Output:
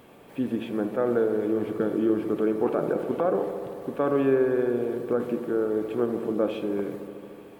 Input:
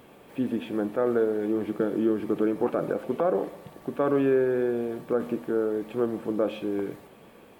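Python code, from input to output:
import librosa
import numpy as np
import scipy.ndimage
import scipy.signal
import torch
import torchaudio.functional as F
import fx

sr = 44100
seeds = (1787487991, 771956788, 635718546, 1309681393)

y = fx.echo_wet_lowpass(x, sr, ms=74, feedback_pct=83, hz=1400.0, wet_db=-10.5)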